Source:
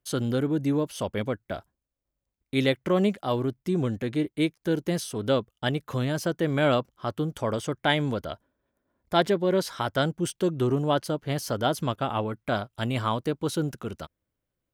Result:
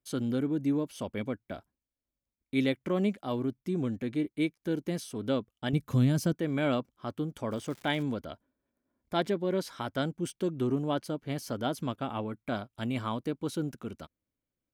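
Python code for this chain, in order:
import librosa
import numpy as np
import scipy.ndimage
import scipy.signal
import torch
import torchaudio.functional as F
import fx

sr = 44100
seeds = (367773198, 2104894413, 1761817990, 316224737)

y = fx.bass_treble(x, sr, bass_db=12, treble_db=7, at=(5.73, 6.33))
y = fx.small_body(y, sr, hz=(250.0, 2300.0), ring_ms=25, db=7)
y = fx.dmg_crackle(y, sr, seeds[0], per_s=210.0, level_db=-32.0, at=(7.5, 8.02), fade=0.02)
y = F.gain(torch.from_numpy(y), -8.0).numpy()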